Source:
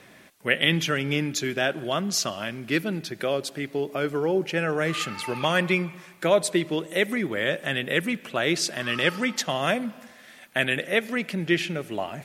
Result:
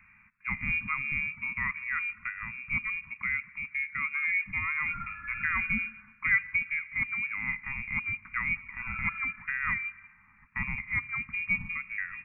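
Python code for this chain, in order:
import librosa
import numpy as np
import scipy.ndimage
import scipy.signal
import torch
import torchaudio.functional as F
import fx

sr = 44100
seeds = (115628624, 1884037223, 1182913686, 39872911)

y = fx.freq_invert(x, sr, carrier_hz=2600)
y = scipy.signal.sosfilt(scipy.signal.ellip(3, 1.0, 60, [220.0, 1200.0], 'bandstop', fs=sr, output='sos'), y)
y = F.gain(torch.from_numpy(y), -4.5).numpy()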